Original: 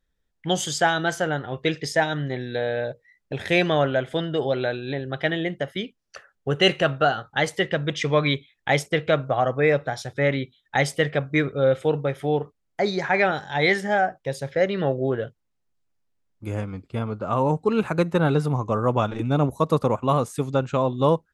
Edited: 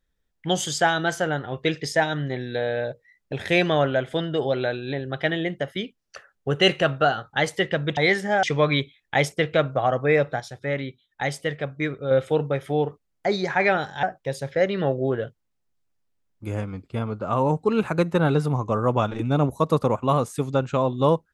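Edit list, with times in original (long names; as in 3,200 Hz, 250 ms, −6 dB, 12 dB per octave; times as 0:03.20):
0:09.94–0:11.65: clip gain −5 dB
0:13.57–0:14.03: move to 0:07.97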